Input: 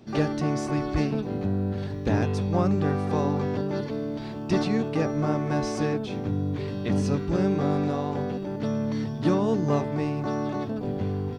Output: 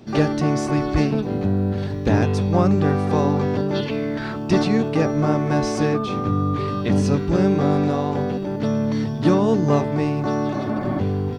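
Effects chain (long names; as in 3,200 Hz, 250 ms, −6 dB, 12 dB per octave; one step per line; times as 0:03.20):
0:03.74–0:04.35: parametric band 3,500 Hz → 1,300 Hz +15 dB 0.61 octaves
0:05.94–0:06.80: steady tone 1,200 Hz −34 dBFS
0:10.57–0:10.97: healed spectral selection 270–2,500 Hz before
level +6 dB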